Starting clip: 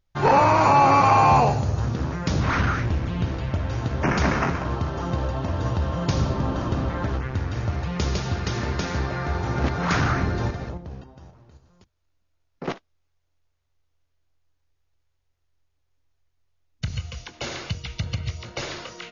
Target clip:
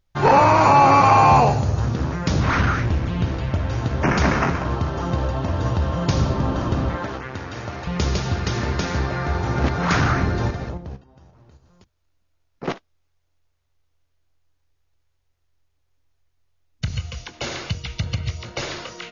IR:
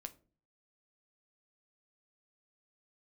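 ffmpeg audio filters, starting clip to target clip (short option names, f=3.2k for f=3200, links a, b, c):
-filter_complex "[0:a]asettb=1/sr,asplit=3[a][b][c];[a]atrim=end=6.964[d];[b]atrim=start=6.96:end=7.87,asetpts=PTS-STARTPTS,afade=t=in:d=0.004:c=qsin,afade=t=out:st=0.906:d=0.004:c=qsin,highpass=f=350:p=1[e];[c]atrim=start=7.866[f];[d][e]acrossfade=d=0.004:c1=hsin:c2=qsin[g];[g][f]acrossfade=d=0.004:c1=qsin:c2=hsin,asettb=1/sr,asplit=3[h][i][j];[h]atrim=end=10.964[k];[i]atrim=start=10.96:end=12.63,asetpts=PTS-STARTPTS,afade=t=in:d=0.004:c=qsin,afade=t=out:st=1.666:d=0.004:c=qsin,acompressor=threshold=-49dB:ratio=6[l];[j]atrim=start=12.626[m];[k][l]acrossfade=d=0.004:c1=hsin:c2=qsin[n];[n][m]acrossfade=d=0.004:c1=qsin:c2=hsin,volume=3dB"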